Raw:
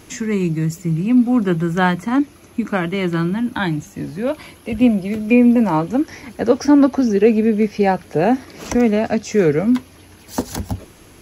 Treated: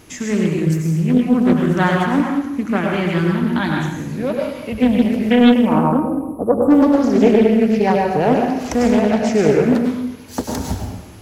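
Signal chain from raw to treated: spectral selection erased 5.65–6.71 s, 1.3–7.9 kHz; reverberation RT60 1.0 s, pre-delay 87 ms, DRR -0.5 dB; loudspeaker Doppler distortion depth 0.38 ms; trim -1.5 dB

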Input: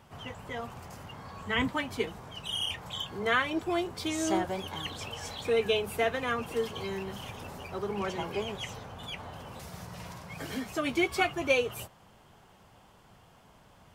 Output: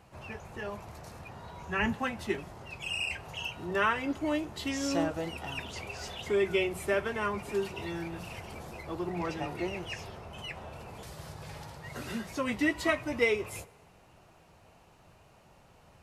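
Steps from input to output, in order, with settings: tape speed -13%; on a send: reverberation RT60 1.3 s, pre-delay 5 ms, DRR 22 dB; on the sum: trim -1 dB

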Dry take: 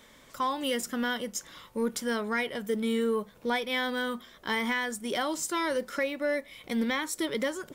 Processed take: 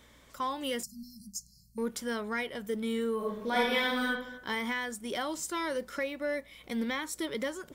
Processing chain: hum 60 Hz, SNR 30 dB; 0.83–1.78 s: brick-wall FIR band-stop 230–4100 Hz; 3.16–4.04 s: reverb throw, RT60 0.95 s, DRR -5 dB; trim -4 dB

